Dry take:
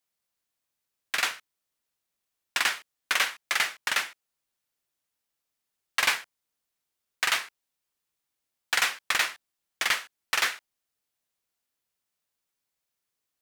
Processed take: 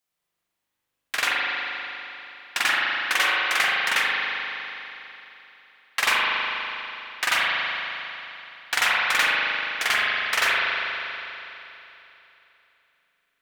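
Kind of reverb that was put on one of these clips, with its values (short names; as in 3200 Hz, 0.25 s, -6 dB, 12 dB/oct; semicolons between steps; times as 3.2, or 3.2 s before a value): spring tank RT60 3.2 s, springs 40 ms, chirp 50 ms, DRR -6.5 dB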